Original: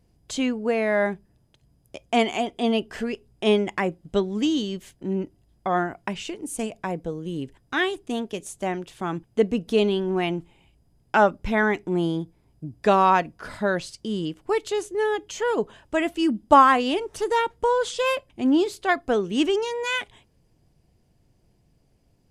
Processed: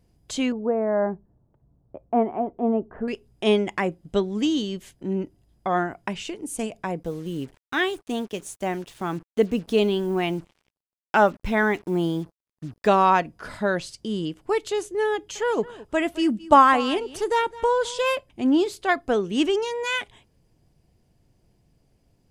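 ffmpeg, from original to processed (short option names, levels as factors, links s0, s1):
-filter_complex "[0:a]asettb=1/sr,asplit=3[s0][s1][s2];[s0]atrim=end=0.524[s3];[s1]atrim=start=0.52:end=3.08,asetpts=PTS-STARTPTS,afade=t=in:d=0.004:c=qsin,afade=t=out:st=2.556:d=0.004:c=qsin,lowpass=f=1200:w=0.5412,lowpass=f=1200:w=1.3066[s4];[s2]atrim=start=3.076[s5];[s3][s4]acrossfade=d=0.004:c1=hsin:c2=qsin[s6];[s6][s5]acrossfade=d=0.004:c1=qsin:c2=hsin,asettb=1/sr,asplit=3[s7][s8][s9];[s7]atrim=end=7.034[s10];[s8]atrim=start=7.03:end=12.88,asetpts=PTS-STARTPTS,afade=t=in:d=0.004:c=qsin,afade=t=out:st=5.846:d=0.004:c=qsin,acrusher=bits=7:mix=0:aa=0.5[s11];[s9]atrim=start=12.876[s12];[s10][s11]acrossfade=d=0.004:c1=hsin:c2=qsin[s13];[s13][s12]acrossfade=d=0.004:c1=qsin:c2=hsin,asettb=1/sr,asplit=3[s14][s15][s16];[s14]atrim=end=15.144[s17];[s15]atrim=start=15.14:end=17.99,asetpts=PTS-STARTPTS,afade=t=in:d=0.004:c=qsin,afade=t=out:st=2.846:d=0.004:c=qsin,aecho=1:1:214:0.119,atrim=end_sample=125685[s18];[s16]atrim=start=17.986[s19];[s17][s18]acrossfade=d=0.004:c1=hsin:c2=qsin[s20];[s20][s19]acrossfade=d=0.004:c1=qsin:c2=hsin"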